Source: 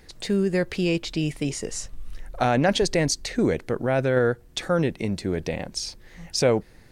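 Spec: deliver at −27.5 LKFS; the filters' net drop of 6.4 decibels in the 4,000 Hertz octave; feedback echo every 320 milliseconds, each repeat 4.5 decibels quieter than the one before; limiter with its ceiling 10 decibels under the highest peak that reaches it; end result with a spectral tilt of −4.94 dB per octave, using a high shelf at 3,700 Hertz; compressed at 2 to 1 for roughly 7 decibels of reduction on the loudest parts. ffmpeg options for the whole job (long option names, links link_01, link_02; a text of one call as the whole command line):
ffmpeg -i in.wav -af "highshelf=frequency=3700:gain=-5.5,equalizer=frequency=4000:width_type=o:gain=-4.5,acompressor=threshold=-29dB:ratio=2,alimiter=level_in=1dB:limit=-24dB:level=0:latency=1,volume=-1dB,aecho=1:1:320|640|960|1280|1600|1920|2240|2560|2880:0.596|0.357|0.214|0.129|0.0772|0.0463|0.0278|0.0167|0.01,volume=6.5dB" out.wav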